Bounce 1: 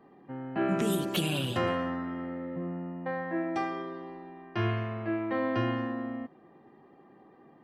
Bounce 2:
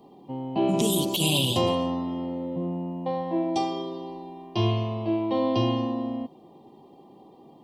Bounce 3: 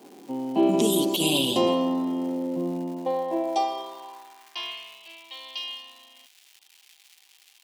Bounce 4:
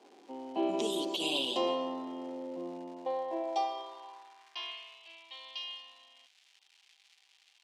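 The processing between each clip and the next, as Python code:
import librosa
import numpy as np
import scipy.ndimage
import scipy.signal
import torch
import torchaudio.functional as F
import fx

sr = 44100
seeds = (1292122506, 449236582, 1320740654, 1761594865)

y1 = fx.curve_eq(x, sr, hz=(700.0, 1000.0, 1500.0, 3200.0), db=(0, 2, -28, 8))
y1 = fx.over_compress(y1, sr, threshold_db=-27.0, ratio=-0.5)
y1 = y1 * librosa.db_to_amplitude(5.5)
y2 = fx.dmg_crackle(y1, sr, seeds[0], per_s=380.0, level_db=-40.0)
y2 = fx.filter_sweep_highpass(y2, sr, from_hz=270.0, to_hz=2700.0, start_s=2.85, end_s=5.02, q=1.6)
y3 = fx.bandpass_edges(y2, sr, low_hz=410.0, high_hz=5700.0)
y3 = y3 * librosa.db_to_amplitude(-6.5)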